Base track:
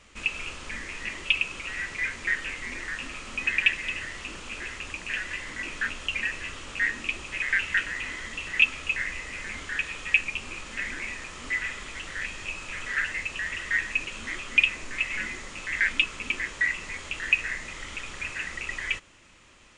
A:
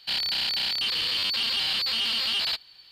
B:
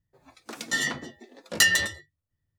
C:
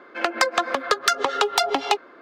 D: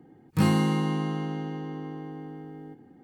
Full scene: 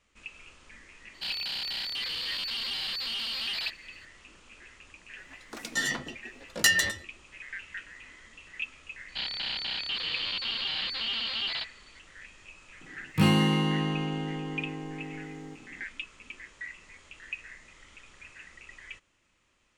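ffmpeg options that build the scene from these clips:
-filter_complex "[1:a]asplit=2[s0][s1];[0:a]volume=0.168[s2];[s1]lowpass=f=4100:w=0.5412,lowpass=f=4100:w=1.3066[s3];[4:a]equalizer=f=2800:w=1.9:g=9.5[s4];[s0]atrim=end=2.91,asetpts=PTS-STARTPTS,volume=0.447,afade=t=in:d=0.004:c=hsin,afade=t=out:st=2.906:d=0.004:c=hsin,adelay=1140[s5];[2:a]atrim=end=2.58,asetpts=PTS-STARTPTS,volume=0.75,afade=t=in:d=0.004:c=hsin,afade=t=out:st=2.576:d=0.004:c=hsin,adelay=5040[s6];[s3]atrim=end=2.91,asetpts=PTS-STARTPTS,volume=0.631,afade=t=in:d=0.004:c=hsin,afade=t=out:st=2.906:d=0.004:c=hsin,adelay=9080[s7];[s4]atrim=end=3.03,asetpts=PTS-STARTPTS,volume=0.944,afade=t=in:d=0.004:c=hsin,afade=t=out:st=3.026:d=0.004:c=hsin,adelay=12810[s8];[s2][s5][s6][s7][s8]amix=inputs=5:normalize=0"

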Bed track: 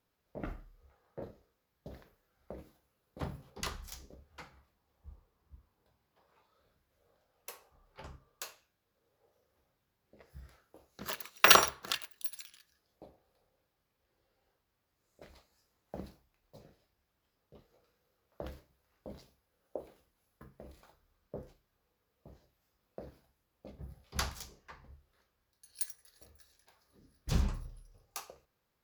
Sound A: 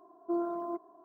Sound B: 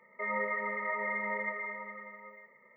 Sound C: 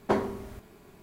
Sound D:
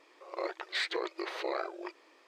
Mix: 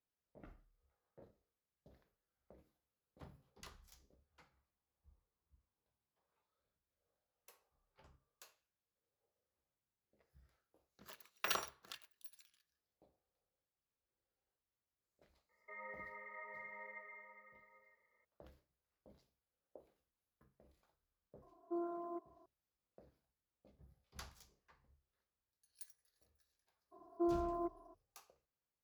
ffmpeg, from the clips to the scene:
-filter_complex "[1:a]asplit=2[s0][s1];[0:a]volume=0.133[s2];[2:a]bass=f=250:g=-13,treble=f=4000:g=9,atrim=end=2.76,asetpts=PTS-STARTPTS,volume=0.133,afade=t=in:d=0.004:c=hsin,afade=t=out:st=2.756:d=0.004:c=hsin,adelay=15490[s3];[s0]atrim=end=1.04,asetpts=PTS-STARTPTS,volume=0.335,afade=t=in:d=0.004:c=hsin,afade=t=out:st=1.036:d=0.004:c=hsin,adelay=21420[s4];[s1]atrim=end=1.04,asetpts=PTS-STARTPTS,volume=0.631,afade=t=in:d=0.02,afade=t=out:st=1.02:d=0.02,adelay=26910[s5];[s2][s3][s4][s5]amix=inputs=4:normalize=0"

